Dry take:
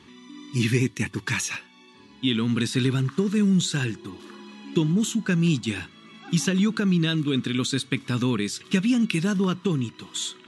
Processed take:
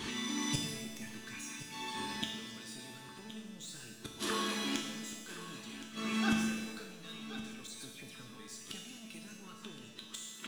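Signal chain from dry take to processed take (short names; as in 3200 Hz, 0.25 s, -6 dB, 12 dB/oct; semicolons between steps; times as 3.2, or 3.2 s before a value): high shelf 6500 Hz +10.5 dB; power-law curve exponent 0.7; low shelf 210 Hz -2.5 dB; sample leveller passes 1; harmonic-percussive split percussive +9 dB; flipped gate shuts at -12 dBFS, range -29 dB; resonator 220 Hz, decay 1.1 s, mix 90%; 7.67–8.37 dispersion lows, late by 0.105 s, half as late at 2300 Hz; echo 1.069 s -14 dB; shimmer reverb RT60 1.4 s, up +7 st, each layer -8 dB, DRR 4 dB; gain +7 dB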